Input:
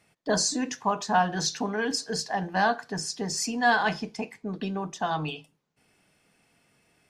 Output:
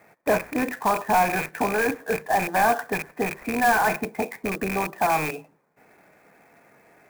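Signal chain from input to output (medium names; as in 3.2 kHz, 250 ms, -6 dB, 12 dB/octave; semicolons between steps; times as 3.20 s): rattle on loud lows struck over -39 dBFS, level -16 dBFS; in parallel at +1.5 dB: compression, threshold -35 dBFS, peak gain reduction 17 dB; on the sum: overdrive pedal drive 19 dB, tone 1.1 kHz, clips at -8.5 dBFS; rippled Chebyshev low-pass 2.5 kHz, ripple 3 dB; sampling jitter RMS 0.028 ms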